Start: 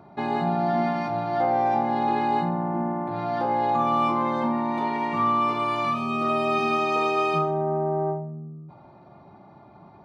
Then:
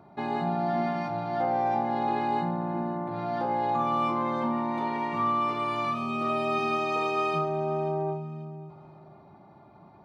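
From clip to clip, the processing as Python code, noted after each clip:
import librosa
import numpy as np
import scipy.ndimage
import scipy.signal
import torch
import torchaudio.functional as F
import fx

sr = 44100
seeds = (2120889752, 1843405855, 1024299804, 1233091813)

y = fx.echo_feedback(x, sr, ms=533, feedback_pct=28, wet_db=-17.0)
y = F.gain(torch.from_numpy(y), -4.0).numpy()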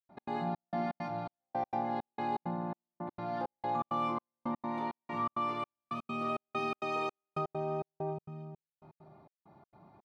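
y = fx.step_gate(x, sr, bpm=165, pattern='.x.xxx..xx.xxx..', floor_db=-60.0, edge_ms=4.5)
y = F.gain(torch.from_numpy(y), -6.0).numpy()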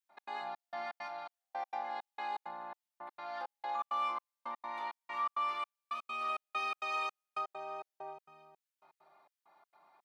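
y = scipy.signal.sosfilt(scipy.signal.butter(2, 1100.0, 'highpass', fs=sr, output='sos'), x)
y = F.gain(torch.from_numpy(y), 2.5).numpy()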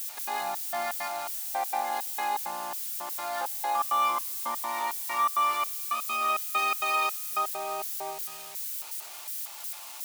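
y = x + 0.5 * 10.0 ** (-38.0 / 20.0) * np.diff(np.sign(x), prepend=np.sign(x[:1]))
y = F.gain(torch.from_numpy(y), 9.0).numpy()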